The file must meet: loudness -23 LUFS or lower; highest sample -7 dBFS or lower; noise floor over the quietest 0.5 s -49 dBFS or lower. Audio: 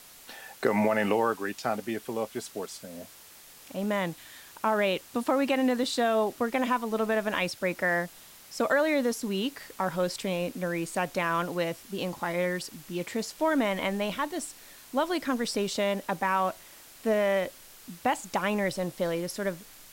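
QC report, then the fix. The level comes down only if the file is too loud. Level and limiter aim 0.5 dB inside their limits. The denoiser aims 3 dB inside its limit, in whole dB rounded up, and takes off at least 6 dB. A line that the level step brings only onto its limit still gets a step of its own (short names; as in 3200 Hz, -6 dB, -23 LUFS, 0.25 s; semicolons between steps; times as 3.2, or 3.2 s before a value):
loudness -29.0 LUFS: OK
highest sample -11.5 dBFS: OK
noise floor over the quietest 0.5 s -51 dBFS: OK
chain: none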